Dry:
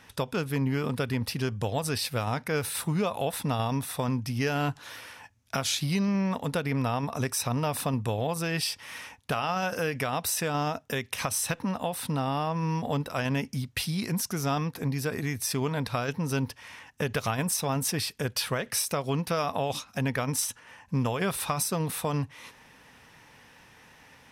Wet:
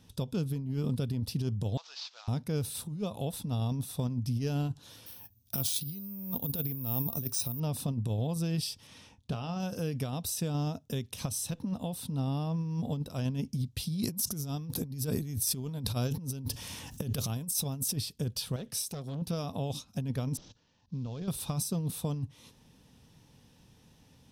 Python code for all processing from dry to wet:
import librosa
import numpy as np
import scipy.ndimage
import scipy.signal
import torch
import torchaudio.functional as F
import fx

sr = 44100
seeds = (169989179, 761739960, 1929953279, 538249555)

y = fx.chain(x, sr, fx.cvsd(bps=32000),
    fx.highpass(hz=930.0, slope=24), at=(1.77, 2.28))
y = fx.chain(y, sr, fx.high_shelf(hz=3700.0, db=4.0),
    fx.resample_bad(factor=3, down='filtered', up='zero_stuff'), at=(5.06, 7.6))
y = fx.chain(y, sr, fx.air_absorb(metres=56.0),
    fx.doubler(ms=24.0, db=-11.5), at=(8.87, 9.6))
y = fx.chain(y, sr, fx.high_shelf(hz=8600.0, db=12.0),
    fx.env_flatten(amount_pct=50), at=(14.03, 17.96))
y = fx.chain(y, sr, fx.peak_eq(hz=67.0, db=-8.0, octaves=1.2),
    fx.transformer_sat(knee_hz=1700.0), at=(18.56, 19.22))
y = fx.chain(y, sr, fx.cvsd(bps=32000),
    fx.level_steps(step_db=12), at=(20.37, 21.28))
y = fx.curve_eq(y, sr, hz=(180.0, 2000.0, 3500.0), db=(0, -23, -8))
y = fx.over_compress(y, sr, threshold_db=-31.0, ratio=-0.5)